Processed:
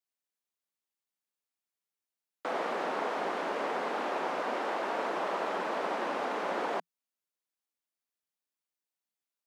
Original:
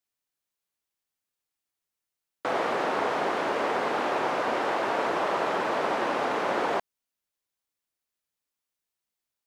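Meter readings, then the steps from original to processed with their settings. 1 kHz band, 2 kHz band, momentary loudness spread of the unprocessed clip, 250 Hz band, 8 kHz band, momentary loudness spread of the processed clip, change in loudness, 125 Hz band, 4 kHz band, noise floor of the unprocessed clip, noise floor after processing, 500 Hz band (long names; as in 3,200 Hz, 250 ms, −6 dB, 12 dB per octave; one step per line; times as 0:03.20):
−5.5 dB, −6.0 dB, 2 LU, −6.0 dB, −6.5 dB, 2 LU, −6.0 dB, −9.5 dB, −6.5 dB, below −85 dBFS, below −85 dBFS, −6.0 dB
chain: Chebyshev high-pass filter 170 Hz, order 6
level −5.5 dB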